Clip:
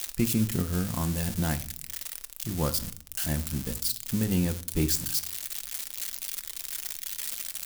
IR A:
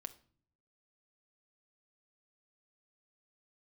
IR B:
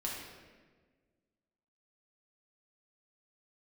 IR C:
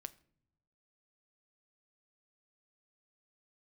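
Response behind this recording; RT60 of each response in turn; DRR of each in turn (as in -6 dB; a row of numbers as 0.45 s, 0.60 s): A; no single decay rate, 1.5 s, no single decay rate; 8.5 dB, -4.0 dB, 12.5 dB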